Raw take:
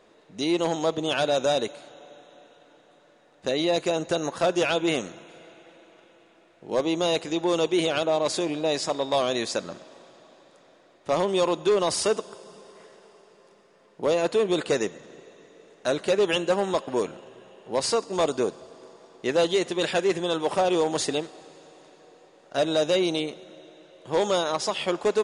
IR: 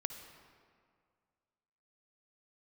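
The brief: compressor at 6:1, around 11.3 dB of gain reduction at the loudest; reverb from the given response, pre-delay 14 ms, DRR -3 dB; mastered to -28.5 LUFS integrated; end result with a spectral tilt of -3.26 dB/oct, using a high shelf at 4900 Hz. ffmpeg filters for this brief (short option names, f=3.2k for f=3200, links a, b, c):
-filter_complex "[0:a]highshelf=f=4.9k:g=5.5,acompressor=threshold=-31dB:ratio=6,asplit=2[a][b];[1:a]atrim=start_sample=2205,adelay=14[c];[b][c]afir=irnorm=-1:irlink=0,volume=3.5dB[d];[a][d]amix=inputs=2:normalize=0,volume=1.5dB"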